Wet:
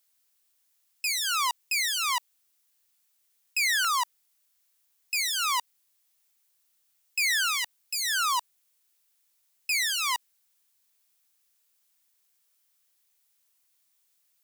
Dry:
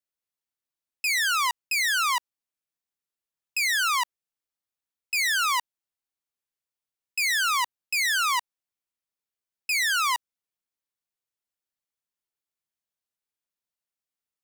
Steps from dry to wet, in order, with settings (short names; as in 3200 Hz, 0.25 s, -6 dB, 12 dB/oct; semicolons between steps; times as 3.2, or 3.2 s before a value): LFO notch saw down 0.26 Hz 1000–2400 Hz; added noise blue -71 dBFS